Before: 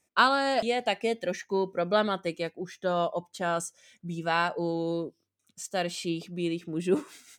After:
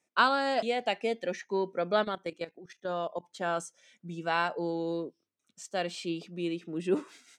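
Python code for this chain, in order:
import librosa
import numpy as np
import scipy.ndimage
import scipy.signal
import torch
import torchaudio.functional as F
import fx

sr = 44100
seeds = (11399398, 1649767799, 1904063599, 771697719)

y = scipy.signal.sosfilt(scipy.signal.butter(2, 180.0, 'highpass', fs=sr, output='sos'), x)
y = fx.level_steps(y, sr, step_db=15, at=(2.03, 3.23), fade=0.02)
y = fx.air_absorb(y, sr, metres=51.0)
y = y * librosa.db_to_amplitude(-2.0)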